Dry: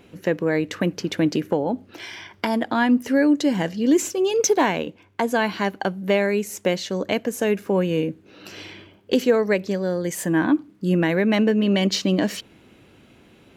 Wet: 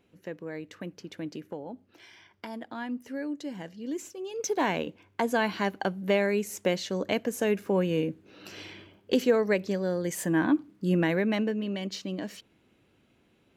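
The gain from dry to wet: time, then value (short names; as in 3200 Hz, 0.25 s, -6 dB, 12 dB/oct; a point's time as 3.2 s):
4.3 s -16.5 dB
4.72 s -5 dB
11.1 s -5 dB
11.79 s -14 dB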